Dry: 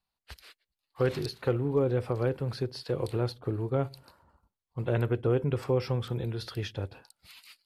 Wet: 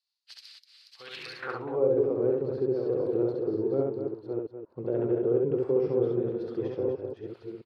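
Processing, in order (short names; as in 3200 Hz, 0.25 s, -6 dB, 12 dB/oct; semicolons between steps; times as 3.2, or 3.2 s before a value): reverse delay 0.629 s, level -6.5 dB; limiter -20 dBFS, peak gain reduction 5.5 dB; on a send: loudspeakers at several distances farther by 23 m -2 dB, 85 m -8 dB; on the sum: band-pass sweep 4800 Hz -> 390 Hz, 0.98–1.97; gain +6.5 dB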